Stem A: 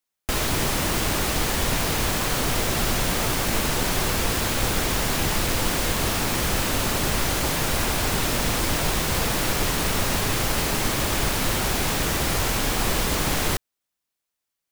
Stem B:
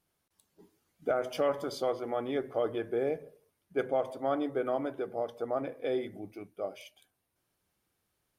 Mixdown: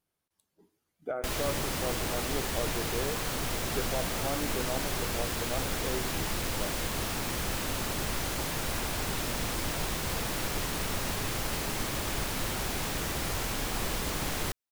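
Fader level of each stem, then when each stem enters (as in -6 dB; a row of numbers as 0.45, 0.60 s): -9.0, -5.0 dB; 0.95, 0.00 s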